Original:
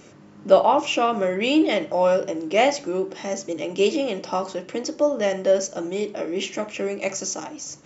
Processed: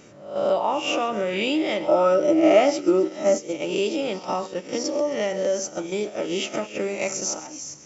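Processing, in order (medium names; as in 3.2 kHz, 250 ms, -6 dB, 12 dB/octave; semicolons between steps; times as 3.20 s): reverse spectral sustain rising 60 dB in 0.59 s; gate -26 dBFS, range -11 dB; compression 2.5:1, threshold -36 dBFS, peak gain reduction 18 dB; 1.88–3.38 s: small resonant body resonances 320/610/1300 Hz, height 13 dB; on a send: feedback echo behind a high-pass 133 ms, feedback 69%, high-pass 3.2 kHz, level -15.5 dB; on the sum: trim +8 dB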